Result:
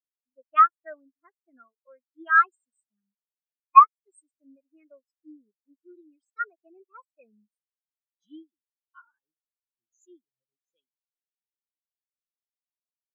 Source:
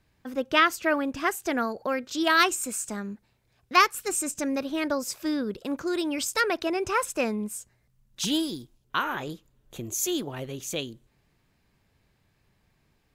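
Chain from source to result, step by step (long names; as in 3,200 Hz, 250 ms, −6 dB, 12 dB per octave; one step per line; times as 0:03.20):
tilt shelving filter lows −4.5 dB, about 850 Hz
every bin expanded away from the loudest bin 4 to 1
level +2.5 dB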